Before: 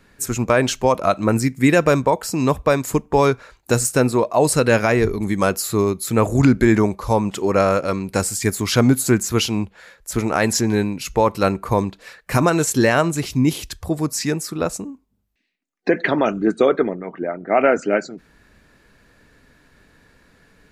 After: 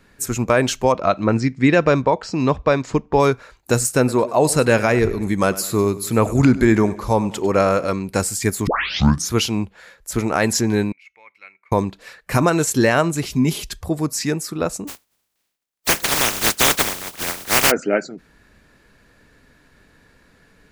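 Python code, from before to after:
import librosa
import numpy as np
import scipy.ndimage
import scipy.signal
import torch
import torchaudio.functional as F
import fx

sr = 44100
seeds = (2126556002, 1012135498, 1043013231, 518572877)

y = fx.lowpass(x, sr, hz=5500.0, slope=24, at=(0.92, 3.2))
y = fx.echo_feedback(y, sr, ms=99, feedback_pct=48, wet_db=-17.5, at=(3.98, 7.9))
y = fx.bandpass_q(y, sr, hz=2200.0, q=19.0, at=(10.92, 11.72))
y = fx.comb(y, sr, ms=4.9, depth=0.65, at=(13.3, 13.81))
y = fx.spec_flatten(y, sr, power=0.12, at=(14.87, 17.7), fade=0.02)
y = fx.edit(y, sr, fx.tape_start(start_s=8.67, length_s=0.66), tone=tone)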